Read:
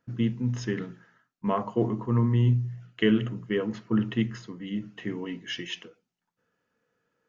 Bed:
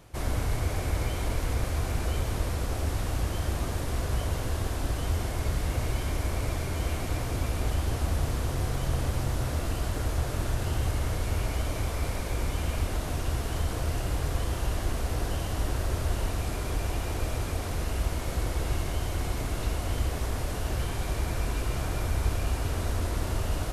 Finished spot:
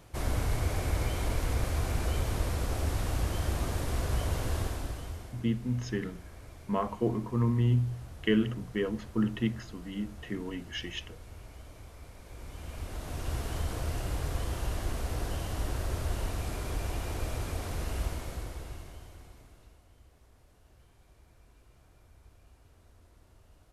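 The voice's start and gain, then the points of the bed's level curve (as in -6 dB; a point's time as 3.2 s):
5.25 s, -3.5 dB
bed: 4.6 s -1.5 dB
5.48 s -19 dB
12.15 s -19 dB
13.35 s -4 dB
18.04 s -4 dB
19.89 s -30.5 dB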